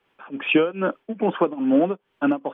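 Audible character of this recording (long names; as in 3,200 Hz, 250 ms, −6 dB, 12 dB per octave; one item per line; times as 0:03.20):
tremolo triangle 2.4 Hz, depth 95%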